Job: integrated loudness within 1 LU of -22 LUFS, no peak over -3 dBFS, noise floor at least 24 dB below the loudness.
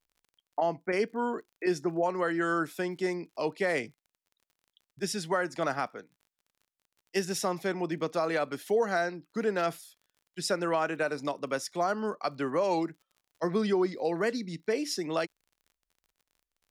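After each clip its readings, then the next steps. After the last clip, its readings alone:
ticks 42/s; loudness -31.0 LUFS; peak -18.0 dBFS; loudness target -22.0 LUFS
-> de-click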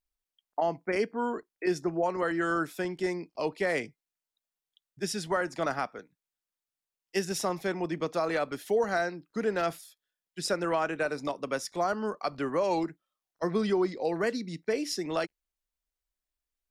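ticks 0.12/s; loudness -31.0 LUFS; peak -18.0 dBFS; loudness target -22.0 LUFS
-> gain +9 dB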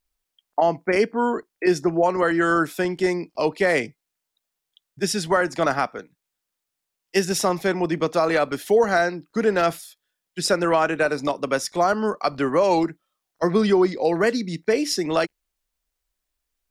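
loudness -22.0 LUFS; peak -9.0 dBFS; noise floor -82 dBFS

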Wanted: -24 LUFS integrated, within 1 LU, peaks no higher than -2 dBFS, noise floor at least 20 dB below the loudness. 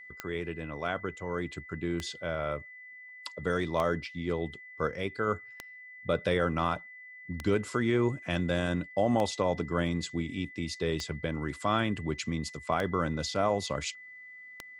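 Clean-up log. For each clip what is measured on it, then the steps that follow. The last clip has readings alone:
clicks 9; steady tone 2000 Hz; tone level -46 dBFS; loudness -32.0 LUFS; peak -13.0 dBFS; loudness target -24.0 LUFS
-> de-click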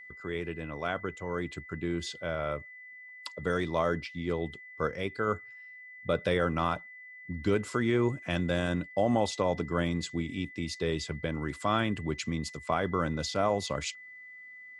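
clicks 0; steady tone 2000 Hz; tone level -46 dBFS
-> notch 2000 Hz, Q 30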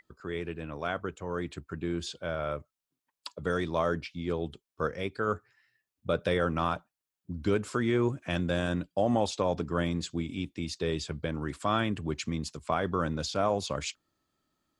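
steady tone none; loudness -32.0 LUFS; peak -13.5 dBFS; loudness target -24.0 LUFS
-> gain +8 dB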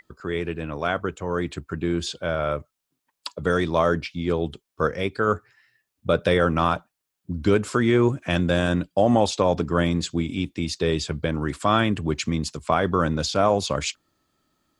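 loudness -24.0 LUFS; peak -5.5 dBFS; noise floor -82 dBFS

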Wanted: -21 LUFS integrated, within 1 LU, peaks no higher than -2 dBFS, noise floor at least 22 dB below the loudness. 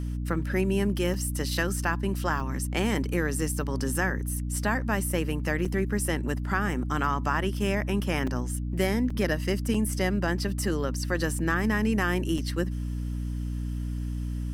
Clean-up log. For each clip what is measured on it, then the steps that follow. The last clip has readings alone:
dropouts 7; longest dropout 4.3 ms; hum 60 Hz; harmonics up to 300 Hz; hum level -28 dBFS; loudness -28.0 LUFS; peak -11.5 dBFS; loudness target -21.0 LUFS
-> interpolate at 1.14/2.4/5.65/8.27/9.1/9.74/12.38, 4.3 ms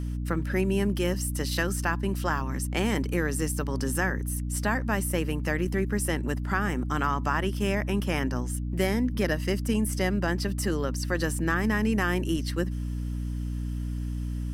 dropouts 0; hum 60 Hz; harmonics up to 300 Hz; hum level -28 dBFS
-> de-hum 60 Hz, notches 5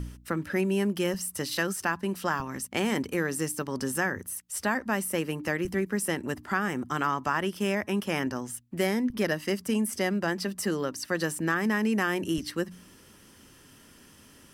hum none; loudness -29.5 LUFS; peak -12.5 dBFS; loudness target -21.0 LUFS
-> gain +8.5 dB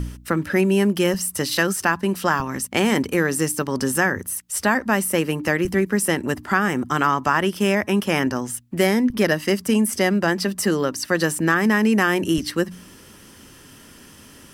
loudness -21.0 LUFS; peak -4.0 dBFS; noise floor -46 dBFS

